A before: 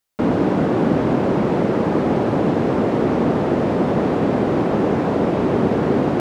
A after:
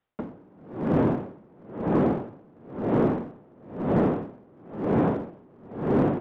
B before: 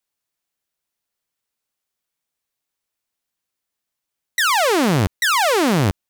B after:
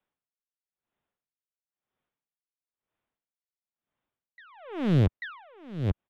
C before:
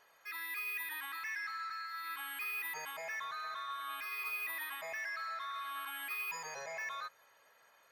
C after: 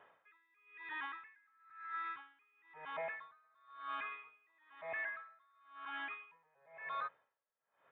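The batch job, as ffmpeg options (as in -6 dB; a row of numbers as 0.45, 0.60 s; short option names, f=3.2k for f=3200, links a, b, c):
-filter_complex "[0:a]aresample=8000,aresample=44100,lowshelf=f=190:g=6,aeval=exprs='0.708*(cos(1*acos(clip(val(0)/0.708,-1,1)))-cos(1*PI/2))+0.0447*(cos(2*acos(clip(val(0)/0.708,-1,1)))-cos(2*PI/2))':c=same,highshelf=f=2.8k:g=-3.5,acrossover=split=100|1700[a][b][c];[b]acontrast=85[d];[a][d][c]amix=inputs=3:normalize=0,asoftclip=type=hard:threshold=-6dB,acompressor=threshold=-16dB:ratio=6,aeval=exprs='val(0)*pow(10,-34*(0.5-0.5*cos(2*PI*1*n/s))/20)':c=same,volume=-2dB"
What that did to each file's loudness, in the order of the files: -7.5, -10.0, -5.0 LU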